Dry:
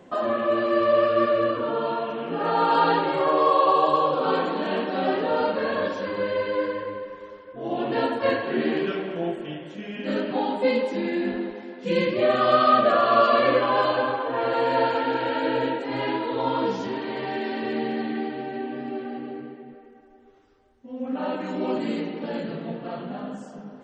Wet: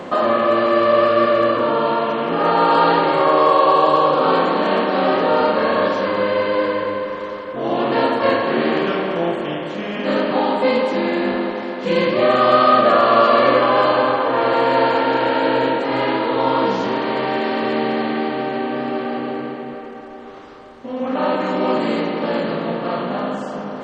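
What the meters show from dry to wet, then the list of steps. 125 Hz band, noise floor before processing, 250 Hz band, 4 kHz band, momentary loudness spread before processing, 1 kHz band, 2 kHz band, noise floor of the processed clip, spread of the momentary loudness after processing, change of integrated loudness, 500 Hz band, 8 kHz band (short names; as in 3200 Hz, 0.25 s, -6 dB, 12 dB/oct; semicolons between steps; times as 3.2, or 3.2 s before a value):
+6.5 dB, -47 dBFS, +6.5 dB, +7.5 dB, 15 LU, +7.0 dB, +7.5 dB, -31 dBFS, 12 LU, +6.5 dB, +6.5 dB, n/a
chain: per-bin compression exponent 0.6; gain +2.5 dB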